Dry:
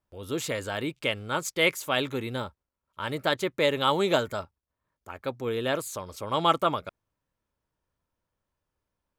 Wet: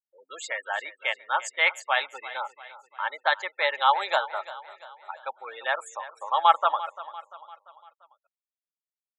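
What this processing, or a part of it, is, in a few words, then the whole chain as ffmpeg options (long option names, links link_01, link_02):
television speaker: -af "afftfilt=real='re*gte(hypot(re,im),0.0251)':imag='im*gte(hypot(re,im),0.0251)':win_size=1024:overlap=0.75,highpass=frequency=780:width=0.5412,highpass=frequency=780:width=1.3066,highpass=frequency=170:width=0.5412,highpass=frequency=170:width=1.3066,equalizer=frequency=180:width_type=q:width=4:gain=8,equalizer=frequency=560:width_type=q:width=4:gain=4,equalizer=frequency=820:width_type=q:width=4:gain=9,equalizer=frequency=1800:width_type=q:width=4:gain=6,equalizer=frequency=3000:width_type=q:width=4:gain=-5,equalizer=frequency=5900:width_type=q:width=4:gain=-7,lowpass=frequency=8800:width=0.5412,lowpass=frequency=8800:width=1.3066,aecho=1:1:344|688|1032|1376:0.158|0.0761|0.0365|0.0175,volume=2dB"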